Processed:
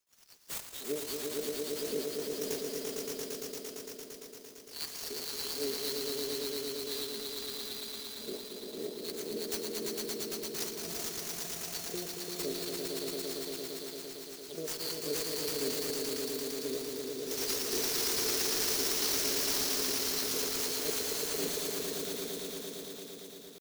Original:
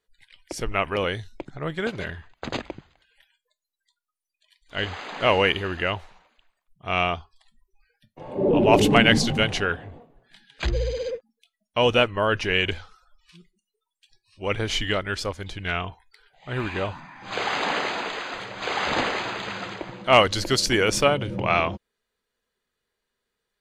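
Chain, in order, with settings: bin magnitudes rounded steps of 30 dB; elliptic band-stop 230–4300 Hz, stop band 60 dB; comb 6.8 ms, depth 70%; negative-ratio compressor -30 dBFS, ratio -0.5; limiter -29.5 dBFS, peak gain reduction 12.5 dB; pitch shift +6.5 st; LFO high-pass sine 1.9 Hz 440–4400 Hz; on a send: swelling echo 0.114 s, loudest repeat 5, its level -3.5 dB; on the sum: clock jitter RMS 0.03 ms; gain +3.5 dB

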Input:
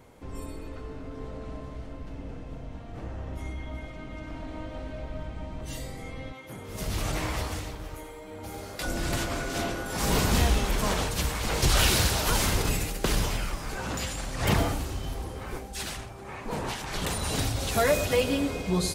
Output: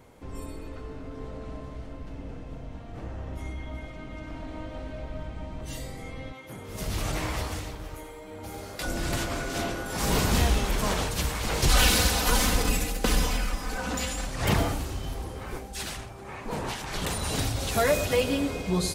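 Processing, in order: 11.68–14.27 comb 4 ms, depth 68%

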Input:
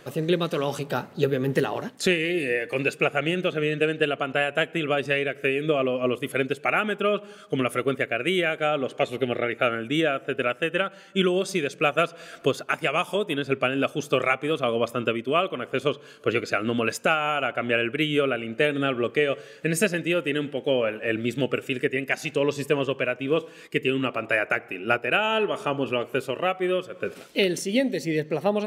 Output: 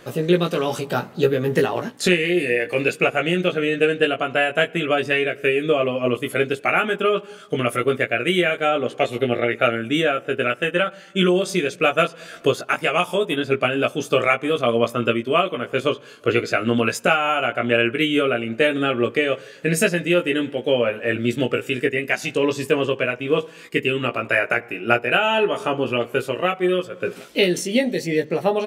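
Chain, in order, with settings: doubler 17 ms -4 dB; gain +3 dB

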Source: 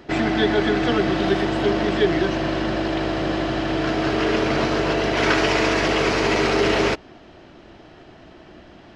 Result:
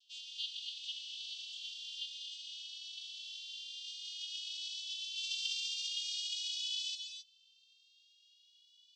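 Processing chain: vocoder on a gliding note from C#4, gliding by +10 st; steep high-pass 2900 Hz 96 dB/oct; non-linear reverb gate 0.29 s rising, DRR 5 dB; gain +3.5 dB

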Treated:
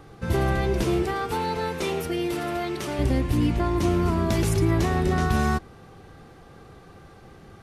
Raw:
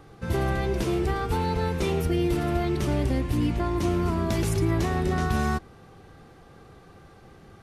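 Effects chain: 1.02–2.98 HPF 280 Hz -> 600 Hz 6 dB/oct; gain +2.5 dB

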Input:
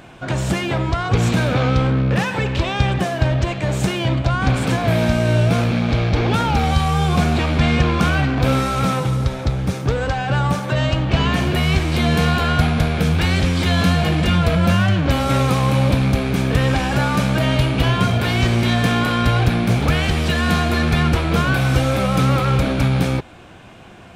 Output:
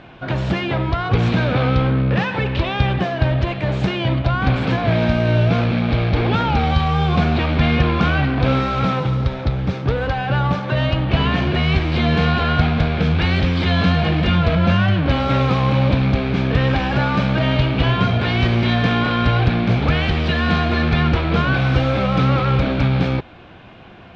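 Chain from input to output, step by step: LPF 4300 Hz 24 dB/oct

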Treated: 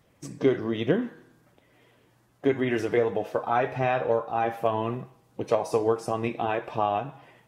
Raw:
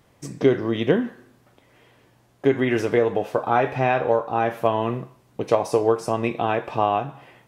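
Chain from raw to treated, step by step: bin magnitudes rounded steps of 15 dB; resonator 160 Hz, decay 1.1 s, mix 40%

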